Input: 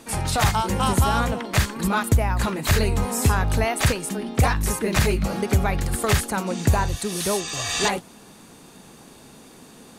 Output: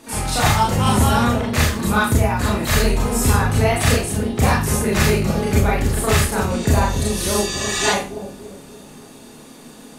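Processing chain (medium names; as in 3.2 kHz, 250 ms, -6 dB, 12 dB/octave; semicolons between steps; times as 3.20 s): bucket-brigade echo 288 ms, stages 1024, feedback 50%, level -7 dB; Schroeder reverb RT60 0.34 s, combs from 26 ms, DRR -4.5 dB; trim -1.5 dB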